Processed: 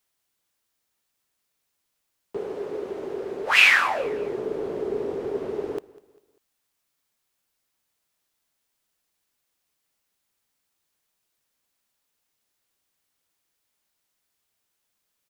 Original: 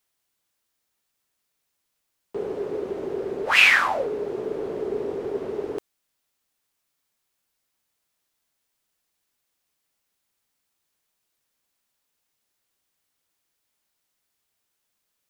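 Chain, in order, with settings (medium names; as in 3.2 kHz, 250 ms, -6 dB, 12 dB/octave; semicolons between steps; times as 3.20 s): 2.37–4.04 s: bass shelf 340 Hz -6.5 dB; feedback delay 198 ms, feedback 40%, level -21 dB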